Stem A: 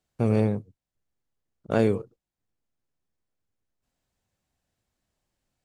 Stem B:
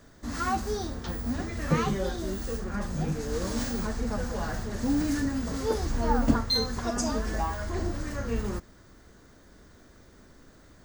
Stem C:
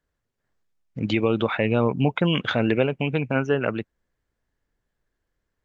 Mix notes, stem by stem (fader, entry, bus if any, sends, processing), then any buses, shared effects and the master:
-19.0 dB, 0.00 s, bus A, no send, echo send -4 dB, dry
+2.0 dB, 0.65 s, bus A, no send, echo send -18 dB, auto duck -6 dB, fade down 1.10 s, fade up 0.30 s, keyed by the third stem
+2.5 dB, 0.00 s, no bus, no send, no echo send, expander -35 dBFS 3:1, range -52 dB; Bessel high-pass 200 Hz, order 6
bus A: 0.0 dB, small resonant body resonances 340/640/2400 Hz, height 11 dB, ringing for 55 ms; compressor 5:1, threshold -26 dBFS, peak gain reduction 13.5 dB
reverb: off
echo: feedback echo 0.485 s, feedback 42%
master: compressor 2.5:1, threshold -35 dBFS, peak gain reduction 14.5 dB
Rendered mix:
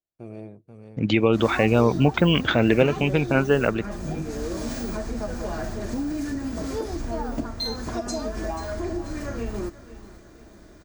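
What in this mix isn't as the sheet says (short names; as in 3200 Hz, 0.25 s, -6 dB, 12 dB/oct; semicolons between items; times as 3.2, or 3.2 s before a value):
stem B: entry 0.65 s -> 1.10 s; stem C: missing Bessel high-pass 200 Hz, order 6; master: missing compressor 2.5:1, threshold -35 dBFS, peak gain reduction 14.5 dB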